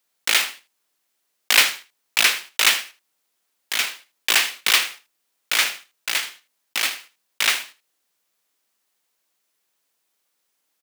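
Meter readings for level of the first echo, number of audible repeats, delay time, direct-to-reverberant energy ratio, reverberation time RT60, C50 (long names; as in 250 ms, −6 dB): −15.0 dB, 1, 79 ms, no reverb audible, no reverb audible, no reverb audible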